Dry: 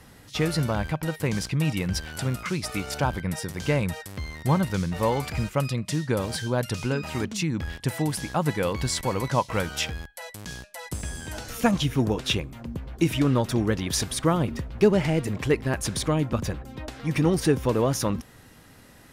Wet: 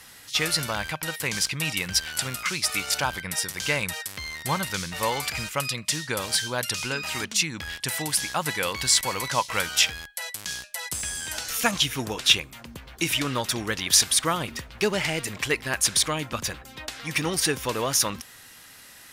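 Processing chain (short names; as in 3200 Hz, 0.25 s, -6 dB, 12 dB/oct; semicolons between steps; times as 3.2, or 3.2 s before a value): tilt shelf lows -10 dB, about 910 Hz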